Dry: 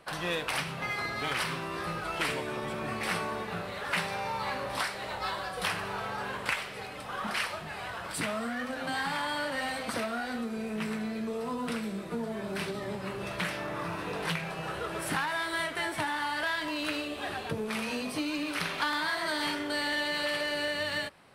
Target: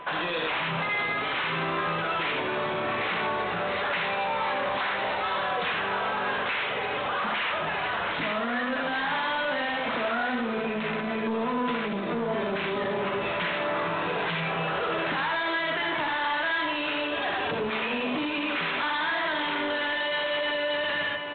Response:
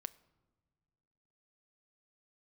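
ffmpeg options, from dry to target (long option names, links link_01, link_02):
-filter_complex "[0:a]bandreject=frequency=50:width_type=h:width=6,bandreject=frequency=100:width_type=h:width=6,bandreject=frequency=150:width_type=h:width=6,aecho=1:1:61|80|696:0.422|0.447|0.178,aresample=8000,asoftclip=type=tanh:threshold=-32dB,aresample=44100,lowshelf=frequency=170:gain=-11.5,alimiter=level_in=11.5dB:limit=-24dB:level=0:latency=1,volume=-11.5dB,asplit=2[link_01][link_02];[1:a]atrim=start_sample=2205,asetrate=22050,aresample=44100[link_03];[link_02][link_03]afir=irnorm=-1:irlink=0,volume=12dB[link_04];[link_01][link_04]amix=inputs=2:normalize=0,aeval=exprs='val(0)+0.00794*sin(2*PI*1000*n/s)':channel_layout=same"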